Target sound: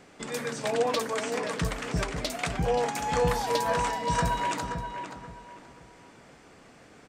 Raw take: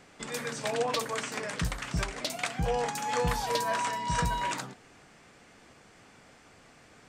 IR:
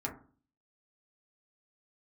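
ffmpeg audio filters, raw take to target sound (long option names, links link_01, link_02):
-filter_complex "[0:a]equalizer=frequency=350:width=0.54:gain=4.5,asplit=2[link_01][link_02];[link_02]adelay=527,lowpass=frequency=2800:poles=1,volume=-7dB,asplit=2[link_03][link_04];[link_04]adelay=527,lowpass=frequency=2800:poles=1,volume=0.3,asplit=2[link_05][link_06];[link_06]adelay=527,lowpass=frequency=2800:poles=1,volume=0.3,asplit=2[link_07][link_08];[link_08]adelay=527,lowpass=frequency=2800:poles=1,volume=0.3[link_09];[link_01][link_03][link_05][link_07][link_09]amix=inputs=5:normalize=0"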